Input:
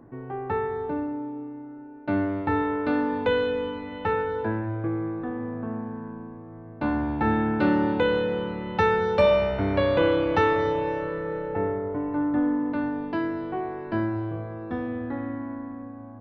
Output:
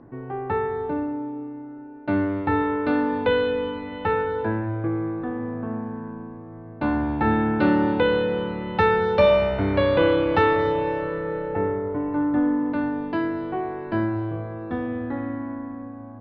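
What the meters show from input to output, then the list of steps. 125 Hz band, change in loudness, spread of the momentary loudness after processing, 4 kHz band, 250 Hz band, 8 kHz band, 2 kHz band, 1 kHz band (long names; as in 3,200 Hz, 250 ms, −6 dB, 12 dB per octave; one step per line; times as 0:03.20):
+2.5 dB, +2.5 dB, 14 LU, +2.5 dB, +2.5 dB, can't be measured, +2.5 dB, +2.5 dB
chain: Butterworth low-pass 5,100 Hz 36 dB per octave
hum removal 228.5 Hz, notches 39
level +2.5 dB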